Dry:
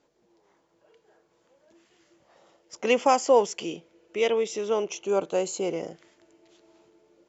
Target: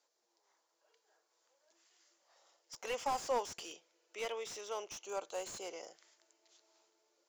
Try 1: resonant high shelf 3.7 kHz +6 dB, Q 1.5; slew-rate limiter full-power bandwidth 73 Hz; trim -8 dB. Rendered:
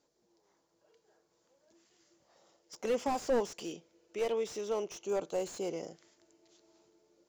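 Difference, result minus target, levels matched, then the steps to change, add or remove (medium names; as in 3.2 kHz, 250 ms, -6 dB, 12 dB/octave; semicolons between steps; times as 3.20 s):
1 kHz band -5.0 dB
add first: high-pass 770 Hz 12 dB/octave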